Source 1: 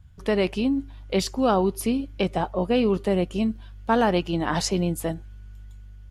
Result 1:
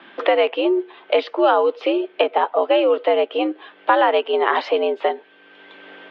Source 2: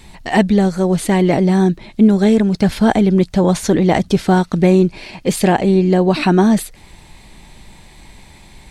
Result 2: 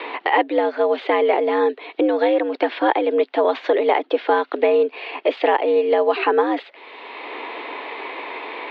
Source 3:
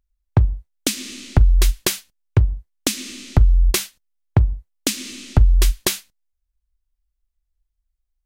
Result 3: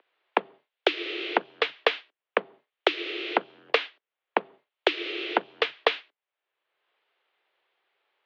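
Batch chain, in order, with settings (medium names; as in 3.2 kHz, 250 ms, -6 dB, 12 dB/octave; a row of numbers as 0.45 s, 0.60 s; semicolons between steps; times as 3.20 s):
mistuned SSB +89 Hz 300–3300 Hz; three bands compressed up and down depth 70%; peak normalisation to -3 dBFS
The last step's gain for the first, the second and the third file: +7.5 dB, -1.0 dB, +4.0 dB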